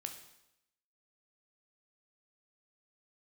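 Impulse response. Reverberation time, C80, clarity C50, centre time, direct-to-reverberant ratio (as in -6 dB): 0.85 s, 11.5 dB, 8.5 dB, 18 ms, 4.5 dB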